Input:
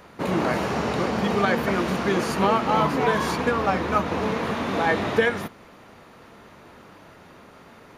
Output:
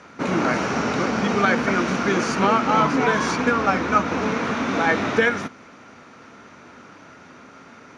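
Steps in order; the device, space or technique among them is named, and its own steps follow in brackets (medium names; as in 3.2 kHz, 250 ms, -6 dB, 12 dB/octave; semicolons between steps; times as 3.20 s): car door speaker (cabinet simulation 81–8100 Hz, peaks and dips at 260 Hz +7 dB, 1.4 kHz +8 dB, 2.3 kHz +5 dB, 5.9 kHz +9 dB)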